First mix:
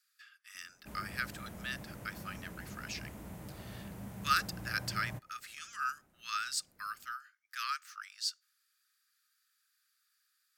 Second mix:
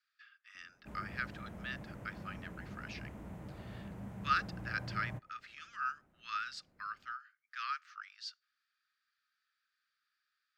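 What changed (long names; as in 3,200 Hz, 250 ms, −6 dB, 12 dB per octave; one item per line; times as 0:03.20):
background: add high shelf with overshoot 6,400 Hz +11.5 dB, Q 1.5
master: add high-frequency loss of the air 230 metres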